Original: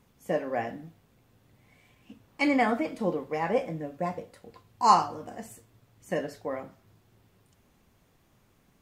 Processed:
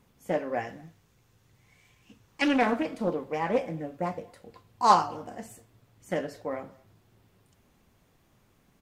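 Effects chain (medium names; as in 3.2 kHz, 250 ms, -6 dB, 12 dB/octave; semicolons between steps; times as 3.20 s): 0.59–2.42 s: fifteen-band graphic EQ 250 Hz -8 dB, 630 Hz -6 dB, 6.3 kHz +6 dB; speakerphone echo 220 ms, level -26 dB; loudspeaker Doppler distortion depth 0.34 ms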